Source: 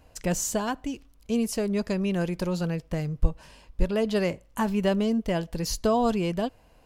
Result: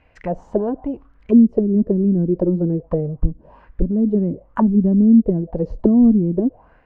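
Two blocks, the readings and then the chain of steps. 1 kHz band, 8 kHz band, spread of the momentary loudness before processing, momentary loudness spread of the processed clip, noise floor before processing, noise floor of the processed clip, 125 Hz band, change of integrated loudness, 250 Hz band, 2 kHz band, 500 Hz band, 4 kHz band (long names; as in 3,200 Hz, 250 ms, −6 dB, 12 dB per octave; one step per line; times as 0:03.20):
−1.5 dB, below −30 dB, 7 LU, 13 LU, −58 dBFS, −54 dBFS, +9.0 dB, +10.0 dB, +12.5 dB, can't be measured, +5.5 dB, below −25 dB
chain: automatic gain control gain up to 7 dB
envelope-controlled low-pass 260–2,300 Hz down, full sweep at −15.5 dBFS
level −1.5 dB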